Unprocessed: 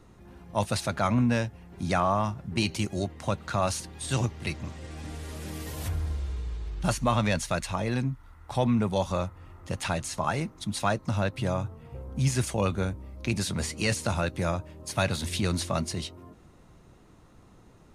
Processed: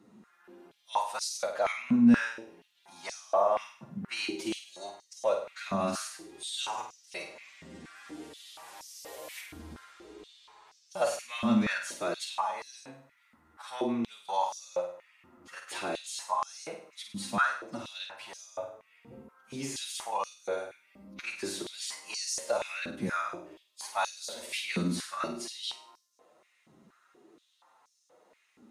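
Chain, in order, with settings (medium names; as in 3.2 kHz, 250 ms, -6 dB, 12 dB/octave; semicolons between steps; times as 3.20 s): time stretch by phase-locked vocoder 1.6×; flutter echo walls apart 8.7 m, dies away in 0.52 s; step-sequenced high-pass 4.2 Hz 220–5600 Hz; trim -7 dB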